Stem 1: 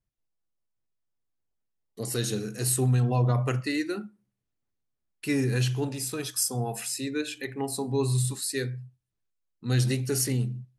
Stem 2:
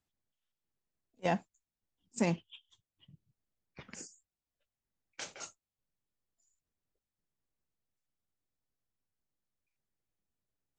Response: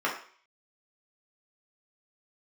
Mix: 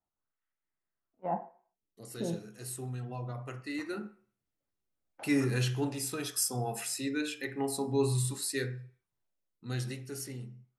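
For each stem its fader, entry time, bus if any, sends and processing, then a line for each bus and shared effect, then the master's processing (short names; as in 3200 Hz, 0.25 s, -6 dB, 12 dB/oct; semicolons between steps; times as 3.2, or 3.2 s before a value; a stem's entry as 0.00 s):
3.57 s -15.5 dB -> 4.06 s -4.5 dB -> 9.29 s -4.5 dB -> 10.09 s -15 dB, 0.00 s, send -15 dB, dry
-6.5 dB, 0.00 s, send -12 dB, limiter -23.5 dBFS, peak gain reduction 5 dB; LFO low-pass sine 0.38 Hz 370–2000 Hz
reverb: on, RT60 0.50 s, pre-delay 3 ms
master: dry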